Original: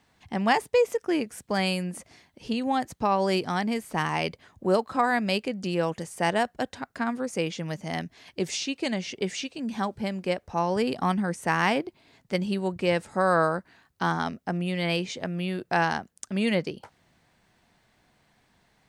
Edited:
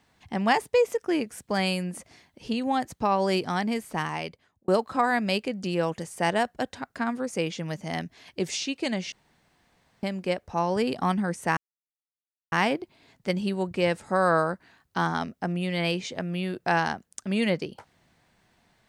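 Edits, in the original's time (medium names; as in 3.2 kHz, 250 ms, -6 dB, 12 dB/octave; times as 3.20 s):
3.82–4.68 s: fade out
9.12–10.03 s: room tone
11.57 s: insert silence 0.95 s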